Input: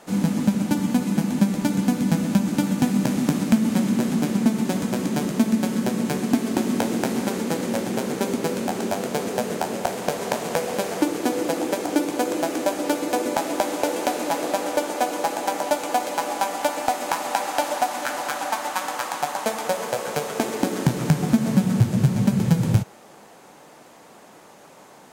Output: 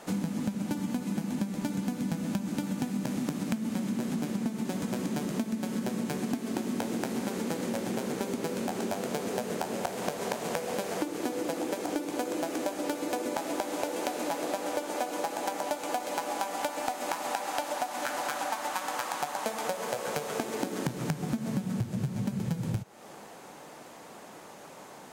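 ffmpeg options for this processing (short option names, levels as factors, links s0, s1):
-af "acompressor=threshold=0.0355:ratio=6"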